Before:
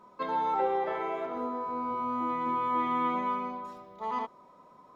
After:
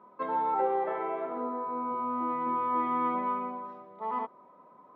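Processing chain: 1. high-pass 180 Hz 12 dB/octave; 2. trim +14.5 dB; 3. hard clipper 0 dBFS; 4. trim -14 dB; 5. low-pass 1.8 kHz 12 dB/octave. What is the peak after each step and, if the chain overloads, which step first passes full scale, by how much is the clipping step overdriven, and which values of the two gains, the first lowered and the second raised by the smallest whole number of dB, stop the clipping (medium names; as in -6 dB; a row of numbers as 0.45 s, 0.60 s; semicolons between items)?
-18.0 dBFS, -3.5 dBFS, -3.5 dBFS, -17.5 dBFS, -17.5 dBFS; nothing clips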